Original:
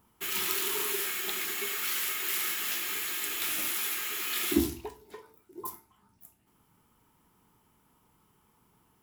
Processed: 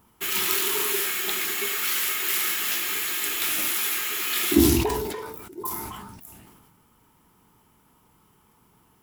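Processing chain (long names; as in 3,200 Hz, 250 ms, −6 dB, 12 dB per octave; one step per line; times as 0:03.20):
level that may fall only so fast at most 32 dB per second
level +6 dB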